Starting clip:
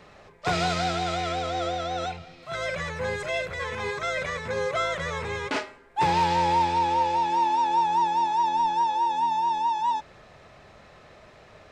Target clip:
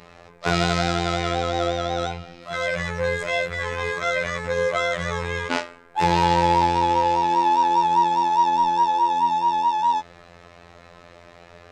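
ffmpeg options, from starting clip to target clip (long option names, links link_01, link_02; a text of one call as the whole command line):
ffmpeg -i in.wav -af "afftfilt=real='hypot(re,im)*cos(PI*b)':imag='0':win_size=2048:overlap=0.75,volume=7dB" out.wav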